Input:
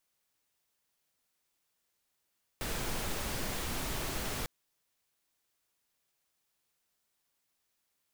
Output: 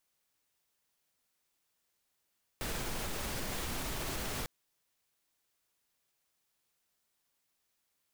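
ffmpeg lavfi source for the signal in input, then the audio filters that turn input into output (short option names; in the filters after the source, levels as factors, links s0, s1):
-f lavfi -i "anoisesrc=c=pink:a=0.0861:d=1.85:r=44100:seed=1"
-af "alimiter=level_in=1.68:limit=0.0631:level=0:latency=1:release=30,volume=0.596"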